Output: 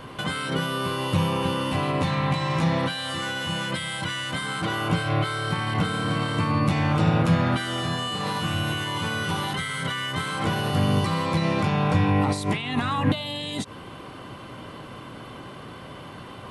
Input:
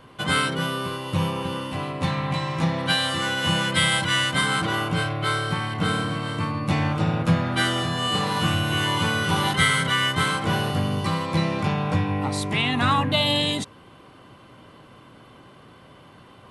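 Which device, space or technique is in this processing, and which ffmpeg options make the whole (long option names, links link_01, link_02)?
de-esser from a sidechain: -filter_complex "[0:a]asplit=2[link_01][link_02];[link_02]highpass=frequency=4300:poles=1,apad=whole_len=728050[link_03];[link_01][link_03]sidechaincompress=threshold=-42dB:ratio=8:attack=1.9:release=71,volume=8.5dB"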